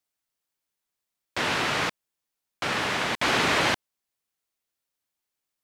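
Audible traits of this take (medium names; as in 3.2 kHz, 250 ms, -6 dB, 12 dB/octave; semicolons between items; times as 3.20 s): noise floor -85 dBFS; spectral tilt -2.5 dB/octave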